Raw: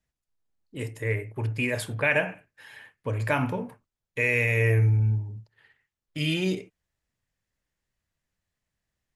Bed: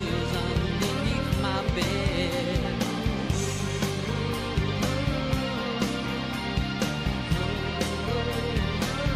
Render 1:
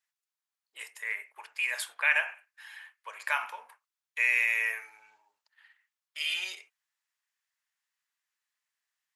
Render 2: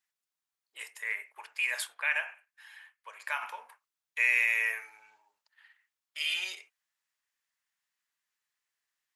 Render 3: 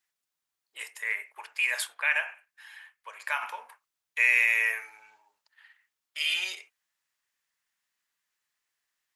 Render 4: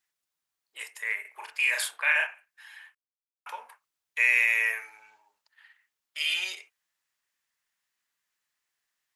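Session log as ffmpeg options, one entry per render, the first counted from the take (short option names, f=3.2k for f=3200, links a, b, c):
-af "highpass=f=960:w=0.5412,highpass=f=960:w=1.3066"
-filter_complex "[0:a]asplit=3[a][b][c];[a]atrim=end=1.872[d];[b]atrim=start=1.868:end=3.422,asetpts=PTS-STARTPTS,volume=-4.5dB[e];[c]atrim=start=3.418[f];[d][e]acrossfade=d=0.004:c1=hsin:c2=hsin[g];[g][f]acrossfade=d=0.004:c1=hsin:c2=hsin"
-af "volume=3.5dB"
-filter_complex "[0:a]asettb=1/sr,asplit=3[a][b][c];[a]atrim=end=1.214[d];[b]atrim=start=1.21:end=2.27,asetpts=PTS-STARTPTS,afade=t=in:d=0.004:c=qsin,afade=t=out:st=1.056:d=0.004:c=qsin,asplit=2[e][f];[f]adelay=38,volume=-2dB[g];[e][g]amix=inputs=2:normalize=0,atrim=end_sample=46746[h];[c]atrim=start=2.266[i];[d][h]acrossfade=d=0.004:c1=hsin:c2=qsin[j];[j][i]acrossfade=d=0.004:c1=qsin:c2=hsin,asplit=3[k][l][m];[k]atrim=end=2.95,asetpts=PTS-STARTPTS,afade=t=out:st=2.946:d=0.004:c=hsin[n];[l]atrim=start=2.95:end=3.46,asetpts=PTS-STARTPTS,volume=0[o];[m]atrim=start=3.46,asetpts=PTS-STARTPTS,afade=t=in:d=0.004:c=hsin[p];[n][o][p]concat=n=3:v=0:a=1"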